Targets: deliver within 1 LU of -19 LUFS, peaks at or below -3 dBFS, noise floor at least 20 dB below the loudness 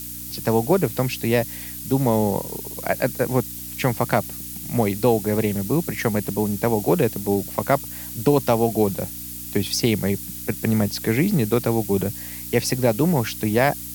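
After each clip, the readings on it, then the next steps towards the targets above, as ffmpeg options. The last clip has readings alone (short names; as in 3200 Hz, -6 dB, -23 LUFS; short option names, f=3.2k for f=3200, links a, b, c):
hum 60 Hz; harmonics up to 300 Hz; hum level -40 dBFS; noise floor -34 dBFS; noise floor target -43 dBFS; loudness -22.5 LUFS; peak -4.0 dBFS; loudness target -19.0 LUFS
-> -af "bandreject=f=60:t=h:w=4,bandreject=f=120:t=h:w=4,bandreject=f=180:t=h:w=4,bandreject=f=240:t=h:w=4,bandreject=f=300:t=h:w=4"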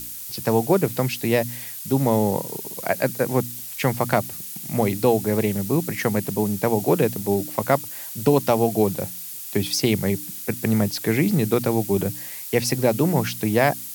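hum none; noise floor -35 dBFS; noise floor target -43 dBFS
-> -af "afftdn=nr=8:nf=-35"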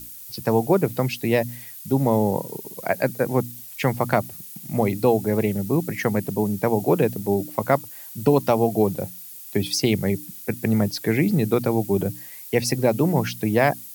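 noise floor -40 dBFS; noise floor target -43 dBFS
-> -af "afftdn=nr=6:nf=-40"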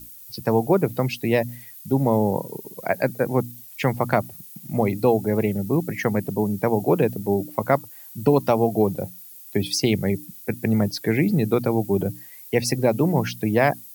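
noise floor -43 dBFS; loudness -23.0 LUFS; peak -4.0 dBFS; loudness target -19.0 LUFS
-> -af "volume=4dB,alimiter=limit=-3dB:level=0:latency=1"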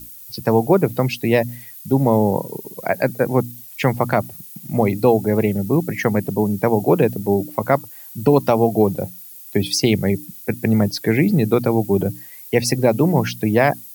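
loudness -19.0 LUFS; peak -3.0 dBFS; noise floor -39 dBFS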